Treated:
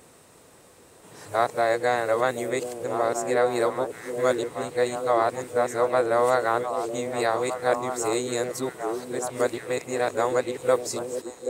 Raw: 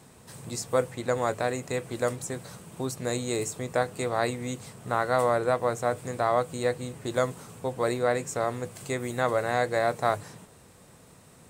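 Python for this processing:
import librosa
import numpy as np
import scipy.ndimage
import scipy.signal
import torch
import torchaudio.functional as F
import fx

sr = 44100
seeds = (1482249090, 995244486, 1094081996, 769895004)

y = x[::-1].copy()
y = fx.low_shelf_res(y, sr, hz=250.0, db=-6.5, q=1.5)
y = fx.echo_stepped(y, sr, ms=781, hz=340.0, octaves=1.4, feedback_pct=70, wet_db=-3.0)
y = F.gain(torch.from_numpy(y), 2.0).numpy()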